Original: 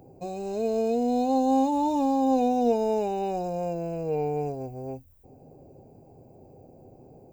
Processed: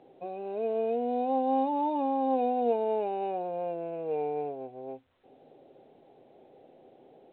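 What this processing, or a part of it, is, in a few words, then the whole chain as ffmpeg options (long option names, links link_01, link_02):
telephone: -af "highpass=340,lowpass=3100,volume=-2dB" -ar 8000 -c:a pcm_alaw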